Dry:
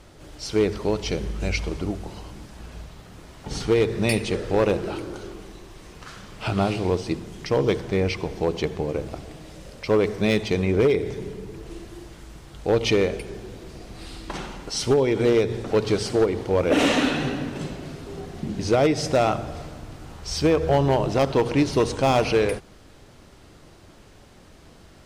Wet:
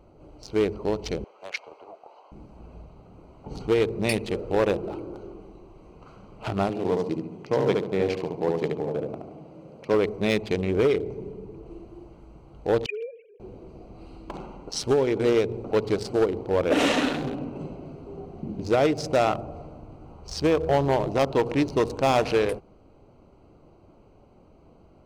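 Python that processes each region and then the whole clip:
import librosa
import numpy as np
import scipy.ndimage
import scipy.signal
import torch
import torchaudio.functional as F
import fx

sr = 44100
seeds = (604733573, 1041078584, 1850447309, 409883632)

y = fx.chain(x, sr, fx.highpass(hz=590.0, slope=24),
    fx.air_absorb(metres=56.0),
    fx.doppler_dist(depth_ms=0.26), at=(1.24, 2.32))
y = fx.chain(y, sr, fx.highpass(hz=110.0, slope=24),
    fx.high_shelf(hz=2800.0, db=-4.5),
    fx.echo_feedback(ms=72, feedback_pct=42, wet_db=-3.0), at=(6.69, 9.94))
y = fx.chain(y, sr, fx.sine_speech(),
    fx.highpass(hz=840.0, slope=12),
    fx.peak_eq(hz=2000.0, db=-10.0, octaves=0.22), at=(12.86, 13.4))
y = fx.wiener(y, sr, points=25)
y = fx.low_shelf(y, sr, hz=250.0, db=-6.5)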